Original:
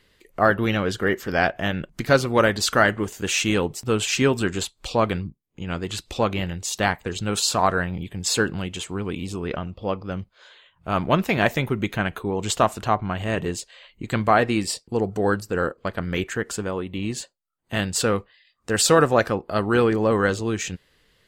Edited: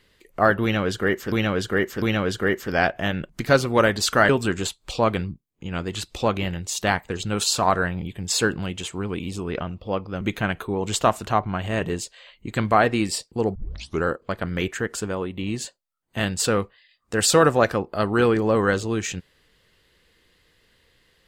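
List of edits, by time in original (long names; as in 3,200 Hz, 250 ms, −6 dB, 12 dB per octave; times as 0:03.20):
0:00.62–0:01.32: repeat, 3 plays
0:02.89–0:04.25: remove
0:10.17–0:11.77: remove
0:15.11: tape start 0.49 s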